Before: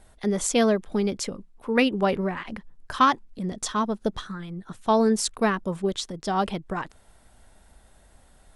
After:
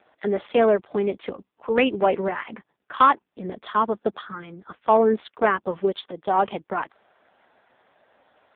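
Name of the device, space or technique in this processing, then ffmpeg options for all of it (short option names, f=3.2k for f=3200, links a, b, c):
telephone: -af "highpass=370,lowpass=3.3k,asoftclip=type=tanh:threshold=-13.5dB,volume=7dB" -ar 8000 -c:a libopencore_amrnb -b:a 5150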